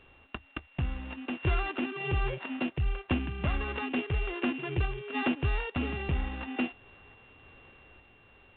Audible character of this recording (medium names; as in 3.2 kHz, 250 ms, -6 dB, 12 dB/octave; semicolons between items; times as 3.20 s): a buzz of ramps at a fixed pitch in blocks of 16 samples; random-step tremolo 3.5 Hz; A-law